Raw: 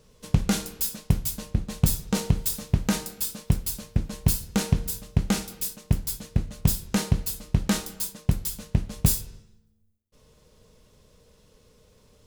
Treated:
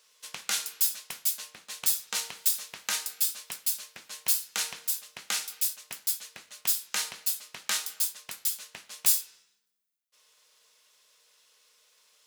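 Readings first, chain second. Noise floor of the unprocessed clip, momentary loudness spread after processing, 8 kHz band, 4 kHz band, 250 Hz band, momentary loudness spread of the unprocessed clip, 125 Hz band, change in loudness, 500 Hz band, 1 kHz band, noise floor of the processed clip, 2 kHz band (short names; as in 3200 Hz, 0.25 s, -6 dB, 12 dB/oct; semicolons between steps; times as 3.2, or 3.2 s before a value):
-61 dBFS, 9 LU, +2.5 dB, +2.5 dB, -32.0 dB, 6 LU, under -35 dB, -1.5 dB, -16.5 dB, -5.5 dB, -70 dBFS, +1.0 dB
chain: HPF 1500 Hz 12 dB/oct; gain +2.5 dB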